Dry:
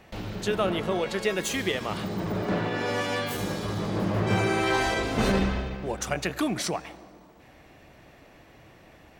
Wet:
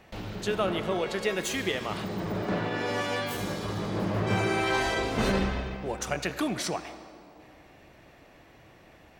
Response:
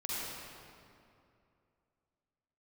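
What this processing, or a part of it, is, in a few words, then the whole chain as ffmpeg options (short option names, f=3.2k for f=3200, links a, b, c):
filtered reverb send: -filter_complex "[0:a]asplit=2[a][b];[b]highpass=310,lowpass=7.4k[c];[1:a]atrim=start_sample=2205[d];[c][d]afir=irnorm=-1:irlink=0,volume=-14.5dB[e];[a][e]amix=inputs=2:normalize=0,volume=-2.5dB"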